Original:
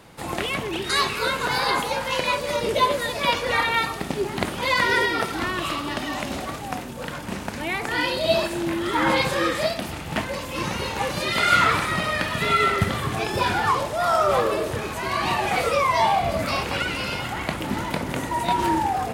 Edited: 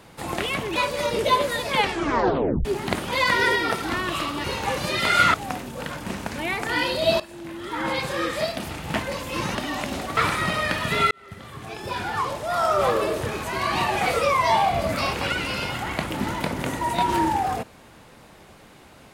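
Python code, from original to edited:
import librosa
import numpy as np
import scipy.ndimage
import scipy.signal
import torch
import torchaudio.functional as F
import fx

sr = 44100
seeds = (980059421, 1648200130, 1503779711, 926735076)

y = fx.edit(x, sr, fx.cut(start_s=0.76, length_s=1.5),
    fx.tape_stop(start_s=3.19, length_s=0.96),
    fx.swap(start_s=5.94, length_s=0.62, other_s=10.77, other_length_s=0.9),
    fx.fade_in_from(start_s=8.42, length_s=1.64, floor_db=-16.5),
    fx.fade_in_span(start_s=12.61, length_s=1.88), tone=tone)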